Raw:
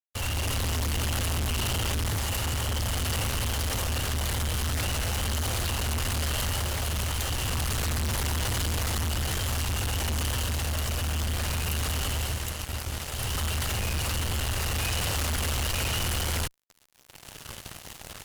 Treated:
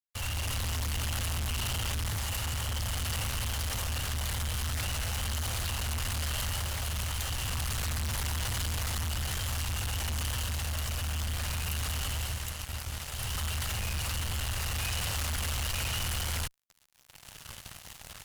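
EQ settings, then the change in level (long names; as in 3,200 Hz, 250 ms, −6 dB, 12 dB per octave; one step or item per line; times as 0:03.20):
parametric band 360 Hz −7.5 dB 1.6 octaves
−3.5 dB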